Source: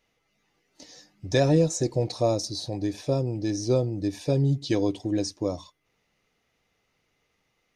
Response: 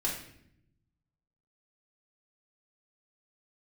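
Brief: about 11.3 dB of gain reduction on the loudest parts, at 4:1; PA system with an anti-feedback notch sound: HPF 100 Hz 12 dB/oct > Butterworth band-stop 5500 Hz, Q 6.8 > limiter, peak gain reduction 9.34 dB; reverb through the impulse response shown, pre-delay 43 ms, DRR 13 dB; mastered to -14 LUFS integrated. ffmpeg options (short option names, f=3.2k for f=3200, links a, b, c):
-filter_complex "[0:a]acompressor=threshold=-30dB:ratio=4,asplit=2[a][b];[1:a]atrim=start_sample=2205,adelay=43[c];[b][c]afir=irnorm=-1:irlink=0,volume=-18.5dB[d];[a][d]amix=inputs=2:normalize=0,highpass=100,asuperstop=centerf=5500:order=8:qfactor=6.8,volume=24dB,alimiter=limit=-4.5dB:level=0:latency=1"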